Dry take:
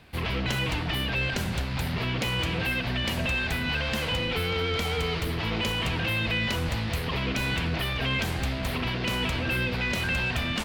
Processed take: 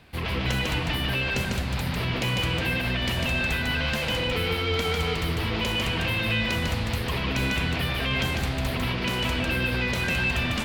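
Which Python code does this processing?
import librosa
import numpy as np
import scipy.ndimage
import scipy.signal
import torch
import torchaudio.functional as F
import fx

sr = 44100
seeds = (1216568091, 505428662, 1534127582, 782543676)

y = x + 10.0 ** (-3.0 / 20.0) * np.pad(x, (int(149 * sr / 1000.0), 0))[:len(x)]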